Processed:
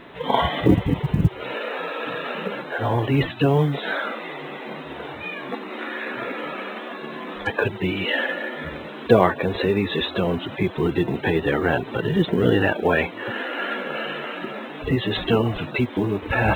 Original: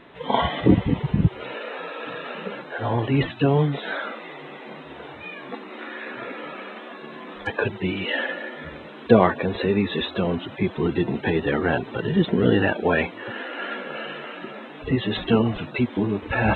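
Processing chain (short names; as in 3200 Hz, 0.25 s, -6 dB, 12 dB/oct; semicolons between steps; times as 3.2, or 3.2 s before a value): dynamic EQ 220 Hz, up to -6 dB, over -36 dBFS, Q 4.3; in parallel at -2 dB: compressor 8:1, threshold -30 dBFS, peak gain reduction 19.5 dB; on the sum: companded quantiser 8-bit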